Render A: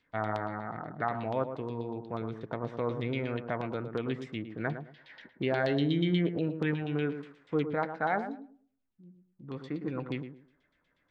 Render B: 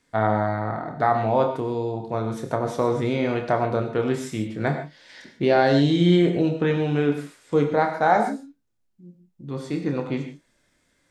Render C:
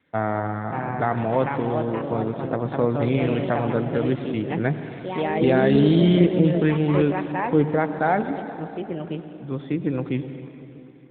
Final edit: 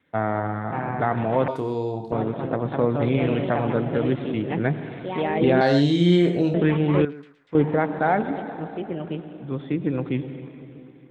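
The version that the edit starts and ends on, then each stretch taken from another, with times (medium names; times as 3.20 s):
C
1.48–2.12 s: from B
5.61–6.54 s: from B
7.05–7.55 s: from A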